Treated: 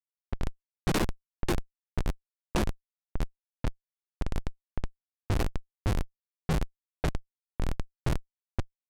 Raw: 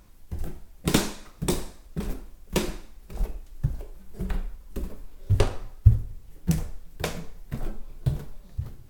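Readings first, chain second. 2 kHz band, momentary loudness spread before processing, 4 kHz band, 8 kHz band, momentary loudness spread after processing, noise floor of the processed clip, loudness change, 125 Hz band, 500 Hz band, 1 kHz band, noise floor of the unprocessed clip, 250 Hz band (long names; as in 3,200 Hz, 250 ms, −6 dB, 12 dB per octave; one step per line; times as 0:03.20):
−1.5 dB, 16 LU, −5.5 dB, −8.5 dB, 10 LU, below −85 dBFS, −5.5 dB, −7.0 dB, −3.5 dB, 0.0 dB, −50 dBFS, −4.0 dB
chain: comparator with hysteresis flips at −24.5 dBFS
low-pass that shuts in the quiet parts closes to 1,400 Hz, open at −26.5 dBFS
level +3 dB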